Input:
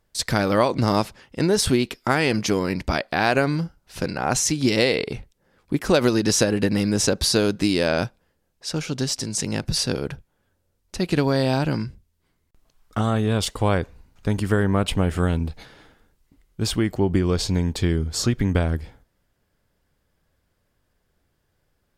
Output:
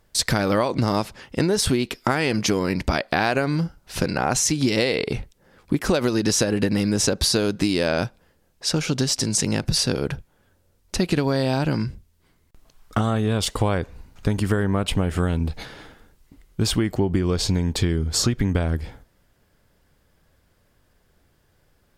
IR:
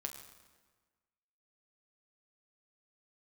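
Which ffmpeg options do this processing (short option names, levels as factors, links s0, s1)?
-af "acompressor=threshold=0.0501:ratio=4,volume=2.37"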